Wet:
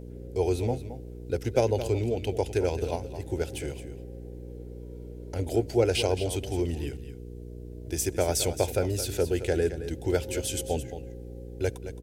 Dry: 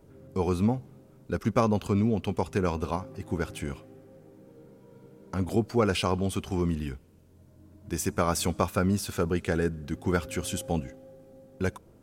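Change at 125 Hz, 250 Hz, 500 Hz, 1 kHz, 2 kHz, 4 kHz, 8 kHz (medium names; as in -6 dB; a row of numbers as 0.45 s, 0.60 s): -0.5 dB, -4.5 dB, +3.5 dB, -4.5 dB, -2.5 dB, +2.5 dB, +3.5 dB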